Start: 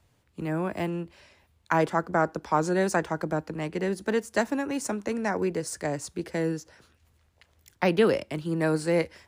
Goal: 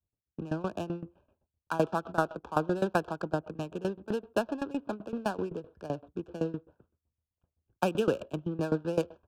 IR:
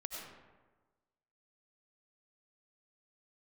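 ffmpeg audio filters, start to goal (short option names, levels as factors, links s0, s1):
-filter_complex "[0:a]agate=range=0.0224:threshold=0.002:ratio=3:detection=peak,aresample=8000,aresample=44100,asplit=2[s0][s1];[1:a]atrim=start_sample=2205,atrim=end_sample=6174[s2];[s1][s2]afir=irnorm=-1:irlink=0,volume=0.251[s3];[s0][s3]amix=inputs=2:normalize=0,adynamicsmooth=sensitivity=6.5:basefreq=650,asuperstop=centerf=2000:order=8:qfactor=2.6,aeval=exprs='val(0)*pow(10,-19*if(lt(mod(7.8*n/s,1),2*abs(7.8)/1000),1-mod(7.8*n/s,1)/(2*abs(7.8)/1000),(mod(7.8*n/s,1)-2*abs(7.8)/1000)/(1-2*abs(7.8)/1000))/20)':c=same"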